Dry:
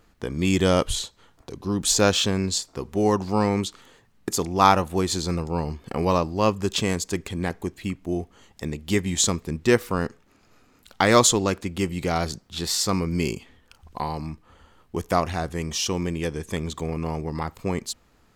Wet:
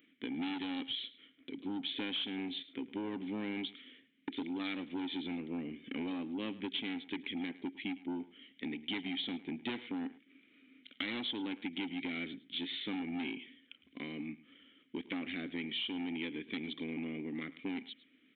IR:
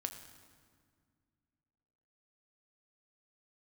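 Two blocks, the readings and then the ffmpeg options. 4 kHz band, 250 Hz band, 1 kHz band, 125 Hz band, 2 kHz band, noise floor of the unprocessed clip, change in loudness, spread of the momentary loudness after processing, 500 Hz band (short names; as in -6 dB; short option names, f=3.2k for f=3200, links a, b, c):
-10.5 dB, -11.5 dB, -24.0 dB, -25.0 dB, -11.5 dB, -60 dBFS, -15.5 dB, 9 LU, -22.0 dB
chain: -filter_complex "[0:a]asplit=3[a][b][c];[a]bandpass=f=270:t=q:w=8,volume=0dB[d];[b]bandpass=f=2.29k:t=q:w=8,volume=-6dB[e];[c]bandpass=f=3.01k:t=q:w=8,volume=-9dB[f];[d][e][f]amix=inputs=3:normalize=0,lowshelf=f=67:g=-10.5,aresample=8000,asoftclip=type=tanh:threshold=-34dB,aresample=44100,aemphasis=mode=production:type=bsi,acompressor=threshold=-44dB:ratio=6,asplit=2[g][h];[h]aecho=0:1:107:0.126[i];[g][i]amix=inputs=2:normalize=0,volume=9dB"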